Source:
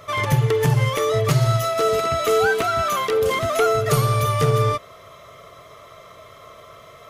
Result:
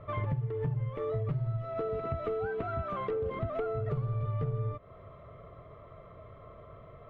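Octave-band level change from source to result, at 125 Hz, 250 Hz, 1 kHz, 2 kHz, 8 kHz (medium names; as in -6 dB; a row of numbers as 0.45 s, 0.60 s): -12.0 dB, -12.0 dB, -17.5 dB, -22.0 dB, under -40 dB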